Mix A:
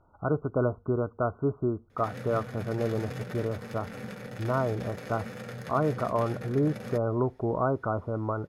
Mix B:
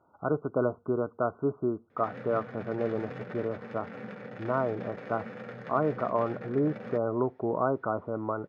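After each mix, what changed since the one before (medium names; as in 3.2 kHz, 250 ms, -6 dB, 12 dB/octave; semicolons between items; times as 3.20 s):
master: add band-pass 180–2300 Hz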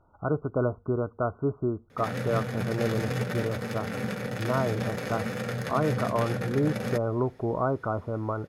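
background +8.0 dB; master: remove band-pass 180–2300 Hz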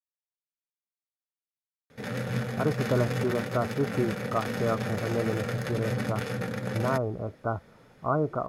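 speech: entry +2.35 s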